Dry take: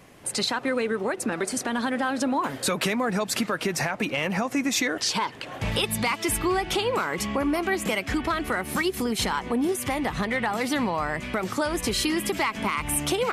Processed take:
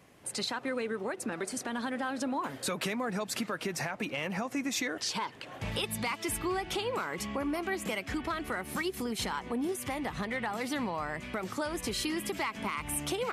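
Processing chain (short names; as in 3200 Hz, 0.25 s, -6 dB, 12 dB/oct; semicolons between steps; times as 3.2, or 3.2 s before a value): HPF 43 Hz; gain -8 dB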